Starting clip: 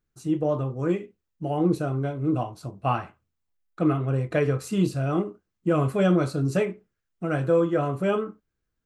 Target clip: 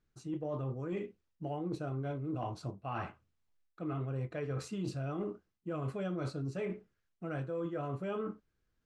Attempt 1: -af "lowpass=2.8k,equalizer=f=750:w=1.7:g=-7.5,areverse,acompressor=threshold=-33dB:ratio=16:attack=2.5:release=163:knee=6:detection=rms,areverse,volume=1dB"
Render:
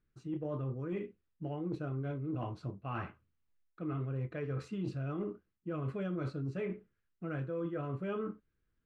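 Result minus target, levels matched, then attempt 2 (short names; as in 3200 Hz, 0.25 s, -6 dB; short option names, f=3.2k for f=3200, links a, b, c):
8000 Hz band -12.0 dB; 1000 Hz band -3.0 dB
-af "lowpass=6.2k,areverse,acompressor=threshold=-33dB:ratio=16:attack=2.5:release=163:knee=6:detection=rms,areverse,volume=1dB"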